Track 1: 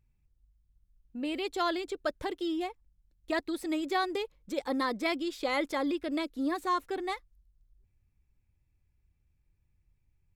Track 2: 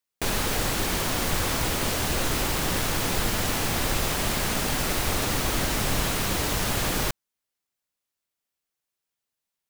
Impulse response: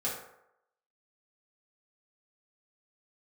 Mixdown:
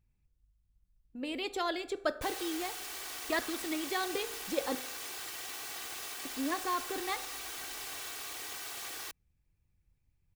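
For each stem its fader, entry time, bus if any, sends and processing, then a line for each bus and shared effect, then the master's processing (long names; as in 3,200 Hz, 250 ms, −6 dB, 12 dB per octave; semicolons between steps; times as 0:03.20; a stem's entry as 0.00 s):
0.0 dB, 0.00 s, muted 0:04.75–0:06.25, send −14.5 dB, harmonic and percussive parts rebalanced harmonic −6 dB
−11.5 dB, 2.00 s, no send, lower of the sound and its delayed copy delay 2.6 ms; high-pass filter 1,200 Hz 6 dB per octave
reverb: on, RT60 0.80 s, pre-delay 3 ms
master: no processing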